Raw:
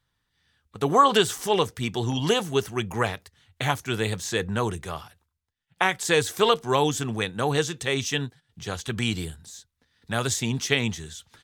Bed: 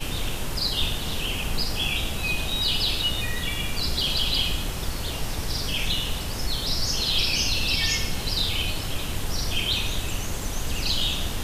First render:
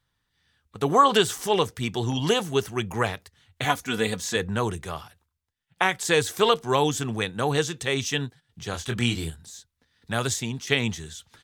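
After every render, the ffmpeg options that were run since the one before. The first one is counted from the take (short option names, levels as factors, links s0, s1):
-filter_complex "[0:a]asettb=1/sr,asplit=3[s0][s1][s2];[s0]atrim=end=3.644[s3];[s1]atrim=start=3.64:end=4.36,asetpts=PTS-STARTPTS,afade=t=in:d=0.004:c=qsin,afade=t=out:st=0.716:d=0.004:c=qsin,aecho=1:1:4.1:0.65,atrim=end_sample=31752[s4];[s2]atrim=start=4.356[s5];[s3][s4]acrossfade=d=0.004:c1=hsin:c2=qsin[s6];[s6][s5]acrossfade=d=0.004:c1=qsin:c2=hsin,asettb=1/sr,asplit=3[s7][s8][s9];[s7]atrim=end=8.714[s10];[s8]atrim=start=8.71:end=9.3,asetpts=PTS-STARTPTS,afade=t=in:d=0.004:c=qsin,afade=t=out:st=0.586:d=0.004:c=qsin,asplit=2[s11][s12];[s12]adelay=25,volume=0.531[s13];[s11][s13]amix=inputs=2:normalize=0,atrim=end_sample=26019[s14];[s9]atrim=start=9.296[s15];[s10][s14]acrossfade=d=0.004:c1=hsin:c2=qsin[s16];[s16][s15]acrossfade=d=0.004:c1=qsin:c2=hsin,asplit=2[s17][s18];[s17]atrim=end=10.67,asetpts=PTS-STARTPTS,afade=t=out:st=10.26:d=0.41:silence=0.354813[s19];[s18]atrim=start=10.67,asetpts=PTS-STARTPTS,afade=t=in:d=0.004:c=hsin:silence=0.354813[s20];[s19][s20]concat=n=2:v=0:a=1"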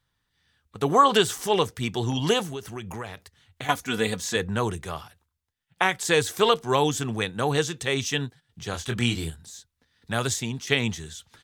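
-filter_complex "[0:a]asettb=1/sr,asplit=3[s0][s1][s2];[s0]atrim=end=2.464[s3];[s1]atrim=start=2.46:end=3.69,asetpts=PTS-STARTPTS,afade=t=in:d=0.004:c=qsin,afade=t=out:st=1.226:d=0.004:c=qsin,acompressor=threshold=0.0251:ratio=4:attack=3.2:release=140:knee=1:detection=peak[s4];[s2]atrim=start=3.686[s5];[s3][s4]acrossfade=d=0.004:c1=hsin:c2=qsin[s6];[s6][s5]acrossfade=d=0.004:c1=qsin:c2=hsin"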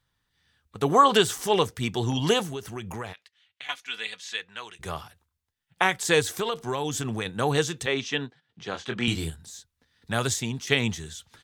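-filter_complex "[0:a]asplit=3[s0][s1][s2];[s0]afade=t=out:st=3.12:d=0.02[s3];[s1]bandpass=f=2800:t=q:w=1.6,afade=t=in:st=3.12:d=0.02,afade=t=out:st=4.79:d=0.02[s4];[s2]afade=t=in:st=4.79:d=0.02[s5];[s3][s4][s5]amix=inputs=3:normalize=0,asettb=1/sr,asplit=3[s6][s7][s8];[s6]atrim=end=6.204[s9];[s7]atrim=start=6.2:end=7.26,asetpts=PTS-STARTPTS,afade=t=in:d=0.004:c=qsin,afade=t=out:st=1.056:d=0.004:c=qsin,acompressor=threshold=0.0562:ratio=4:attack=3.2:release=140:knee=1:detection=peak[s10];[s8]atrim=start=7.256[s11];[s9][s10]acrossfade=d=0.004:c1=hsin:c2=qsin[s12];[s12][s11]acrossfade=d=0.004:c1=qsin:c2=hsin,asettb=1/sr,asplit=3[s13][s14][s15];[s13]atrim=end=7.864[s16];[s14]atrim=start=7.86:end=9.08,asetpts=PTS-STARTPTS,afade=t=in:d=0.004:c=qsin,afade=t=out:st=1.216:d=0.004:c=qsin,highpass=200,lowpass=3900[s17];[s15]atrim=start=9.076[s18];[s16][s17]acrossfade=d=0.004:c1=hsin:c2=qsin[s19];[s19][s18]acrossfade=d=0.004:c1=qsin:c2=hsin"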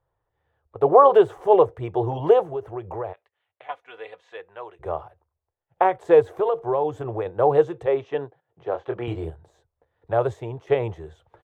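-af "firequalizer=gain_entry='entry(120,0);entry(230,-17);entry(330,5);entry(570,12);entry(1500,-7);entry(4900,-29)':delay=0.05:min_phase=1"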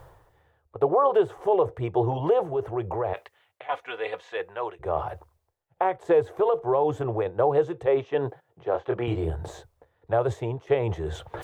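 -af "areverse,acompressor=mode=upward:threshold=0.0891:ratio=2.5,areverse,alimiter=limit=0.251:level=0:latency=1:release=219"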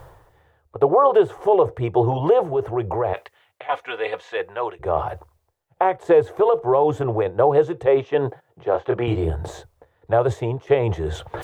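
-af "volume=1.88"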